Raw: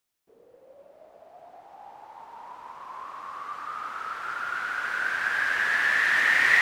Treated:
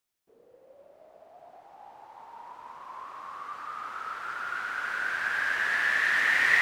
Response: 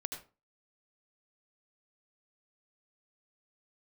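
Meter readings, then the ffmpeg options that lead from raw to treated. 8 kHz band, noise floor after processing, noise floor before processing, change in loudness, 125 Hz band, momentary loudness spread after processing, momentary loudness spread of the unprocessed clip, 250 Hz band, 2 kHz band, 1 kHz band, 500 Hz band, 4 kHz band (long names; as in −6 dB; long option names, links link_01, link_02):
−2.5 dB, −61 dBFS, −59 dBFS, −2.5 dB, can't be measured, 22 LU, 22 LU, −3.0 dB, −2.5 dB, −2.5 dB, −2.5 dB, −2.5 dB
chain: -filter_complex "[0:a]asplit=2[link_01][link_02];[1:a]atrim=start_sample=2205,asetrate=57330,aresample=44100[link_03];[link_02][link_03]afir=irnorm=-1:irlink=0,volume=1dB[link_04];[link_01][link_04]amix=inputs=2:normalize=0,volume=-7.5dB"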